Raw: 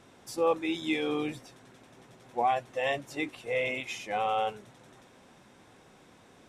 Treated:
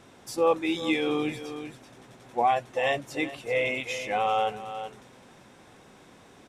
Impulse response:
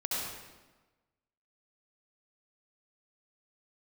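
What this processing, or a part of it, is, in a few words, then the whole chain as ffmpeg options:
ducked delay: -filter_complex "[0:a]asplit=3[s0][s1][s2];[s1]adelay=385,volume=0.355[s3];[s2]apad=whole_len=303091[s4];[s3][s4]sidechaincompress=threshold=0.0224:ratio=8:attack=16:release=544[s5];[s0][s5]amix=inputs=2:normalize=0,volume=1.5"

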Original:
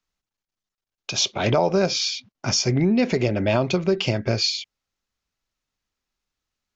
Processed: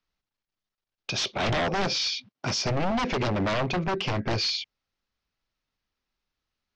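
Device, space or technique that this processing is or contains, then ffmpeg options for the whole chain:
synthesiser wavefolder: -filter_complex "[0:a]lowpass=6600,asettb=1/sr,asplit=3[s0][s1][s2];[s0]atrim=end=3.294[s3];[s1]atrim=start=3.29:end=4.31,asetpts=PTS-STARTPTS,afade=t=in:d=0.004:c=qsin,afade=t=out:st=1.016:d=0.004:c=qsin,equalizer=f=4300:w=0.74:g=-5[s4];[s2]atrim=start=4.306[s5];[s3][s4]acrossfade=d=0.004:c1=hsin:c2=qsin[s6];[s6][s5]acrossfade=d=0.004:c1=qsin:c2=hsin,aeval=exprs='0.0944*(abs(mod(val(0)/0.0944+3,4)-2)-1)':c=same,lowpass=f=5900:w=0.5412,lowpass=f=5900:w=1.3066,asettb=1/sr,asplit=3[s7][s8][s9];[s7]atrim=end=2.084[s10];[s8]atrim=start=2.08:end=2.63,asetpts=PTS-STARTPTS,afade=t=in:d=0.004:c=qsin,afade=t=out:st=0.546:d=0.004:c=qsin,highpass=99[s11];[s9]atrim=start=2.626[s12];[s10][s11]acrossfade=d=0.004:c1=hsin:c2=qsin[s13];[s13][s12]acrossfade=d=0.004:c1=qsin:c2=hsin"

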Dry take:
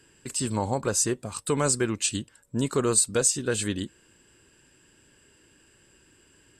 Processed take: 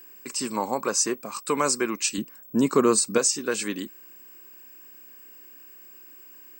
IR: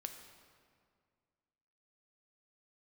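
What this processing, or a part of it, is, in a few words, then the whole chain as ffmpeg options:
old television with a line whistle: -filter_complex "[0:a]highpass=f=200:w=0.5412,highpass=f=200:w=1.3066,equalizer=f=1100:t=q:w=4:g=9,equalizer=f=2300:t=q:w=4:g=7,equalizer=f=3300:t=q:w=4:g=-6,equalizer=f=5500:t=q:w=4:g=7,lowpass=f=8500:w=0.5412,lowpass=f=8500:w=1.3066,aeval=exprs='val(0)+0.00562*sin(2*PI*15734*n/s)':c=same,asettb=1/sr,asplit=3[s0][s1][s2];[s0]atrim=end=2.184[s3];[s1]atrim=start=2.18:end=3.18,asetpts=PTS-STARTPTS,afade=t=in:d=0.004:c=qsin,afade=t=out:st=0.996:d=0.004:c=qsin,lowshelf=f=400:g=10.5[s4];[s2]atrim=start=3.176[s5];[s3][s4]acrossfade=d=0.004:c1=hsin:c2=qsin[s6];[s6][s5]acrossfade=d=0.004:c1=qsin:c2=hsin"

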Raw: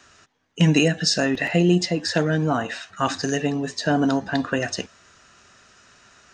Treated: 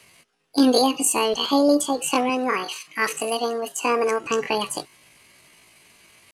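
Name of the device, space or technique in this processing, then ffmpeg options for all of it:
chipmunk voice: -filter_complex "[0:a]asettb=1/sr,asplit=3[s0][s1][s2];[s0]atrim=end=2.304[s3];[s1]atrim=start=2.3:end=4.26,asetpts=PTS-STARTPTS,afade=t=in:d=0.004:c=qsin,afade=t=out:st=1.956:d=0.004:c=qsin,highpass=f=180:p=1[s4];[s2]atrim=start=4.256[s5];[s3][s4]acrossfade=d=0.004:c1=hsin:c2=qsin[s6];[s6][s5]acrossfade=d=0.004:c1=qsin:c2=hsin,asetrate=72056,aresample=44100,atempo=0.612027"

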